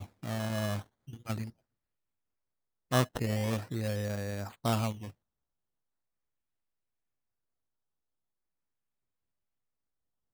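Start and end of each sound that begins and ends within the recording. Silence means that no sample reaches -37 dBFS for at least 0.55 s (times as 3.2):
2.92–5.08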